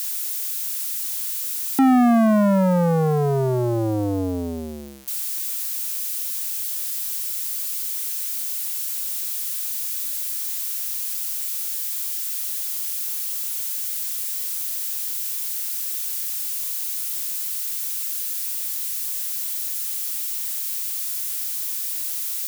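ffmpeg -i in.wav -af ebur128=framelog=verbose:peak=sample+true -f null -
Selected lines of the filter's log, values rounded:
Integrated loudness:
  I:         -22.8 LUFS
  Threshold: -32.8 LUFS
Loudness range:
  LRA:         4.6 LU
  Threshold: -42.9 LUFS
  LRA low:   -23.8 LUFS
  LRA high:  -19.1 LUFS
Sample peak:
  Peak:       -6.9 dBFS
True peak:
  Peak:       -6.9 dBFS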